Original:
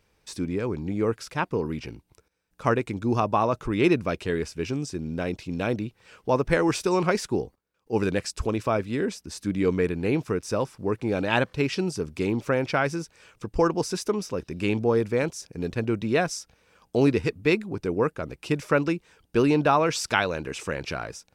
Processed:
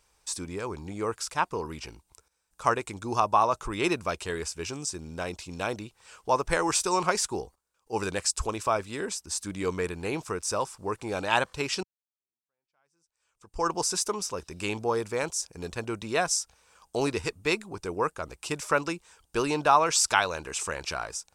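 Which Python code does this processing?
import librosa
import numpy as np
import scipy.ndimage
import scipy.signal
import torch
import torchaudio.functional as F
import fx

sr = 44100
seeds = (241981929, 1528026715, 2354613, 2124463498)

y = fx.edit(x, sr, fx.fade_in_span(start_s=11.83, length_s=1.87, curve='exp'), tone=tone)
y = fx.graphic_eq(y, sr, hz=(125, 250, 500, 1000, 2000, 8000), db=(-9, -9, -4, 5, -4, 11))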